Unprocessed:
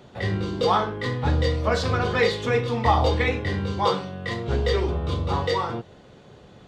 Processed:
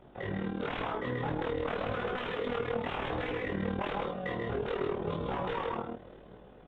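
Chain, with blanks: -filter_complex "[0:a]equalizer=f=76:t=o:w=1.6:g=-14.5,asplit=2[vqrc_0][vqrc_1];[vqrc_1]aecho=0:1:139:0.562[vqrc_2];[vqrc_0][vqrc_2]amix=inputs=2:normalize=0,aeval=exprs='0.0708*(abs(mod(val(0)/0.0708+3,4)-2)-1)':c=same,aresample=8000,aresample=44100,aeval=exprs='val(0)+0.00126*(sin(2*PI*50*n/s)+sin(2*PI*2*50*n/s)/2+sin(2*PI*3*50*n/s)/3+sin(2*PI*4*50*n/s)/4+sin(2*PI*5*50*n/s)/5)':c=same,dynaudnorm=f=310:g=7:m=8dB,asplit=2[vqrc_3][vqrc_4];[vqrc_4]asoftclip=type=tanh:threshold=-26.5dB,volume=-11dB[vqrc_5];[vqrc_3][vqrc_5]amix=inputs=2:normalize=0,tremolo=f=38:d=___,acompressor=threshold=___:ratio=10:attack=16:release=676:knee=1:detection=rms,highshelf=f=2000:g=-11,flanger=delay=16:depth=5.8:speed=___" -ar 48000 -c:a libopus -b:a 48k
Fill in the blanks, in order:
0.857, -24dB, 0.93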